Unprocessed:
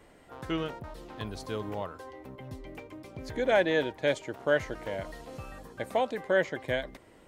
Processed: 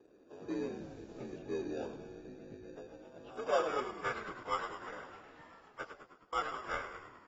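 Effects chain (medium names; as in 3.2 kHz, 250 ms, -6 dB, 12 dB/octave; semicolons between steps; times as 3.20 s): frequency axis rescaled in octaves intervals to 84%; band-pass sweep 370 Hz -> 1.6 kHz, 2.46–4.19 s; harmonic-percussive split harmonic -8 dB; in parallel at -7 dB: sample-and-hold 21×; 5.89–6.33 s: on the sum: inverted gate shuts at -49 dBFS, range -26 dB; on a send: frequency-shifting echo 104 ms, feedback 61%, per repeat -52 Hz, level -9 dB; 0.75–1.38 s: on the sum: added noise white -71 dBFS; 3.85–4.27 s: comb of notches 270 Hz; trim +3.5 dB; AAC 24 kbps 32 kHz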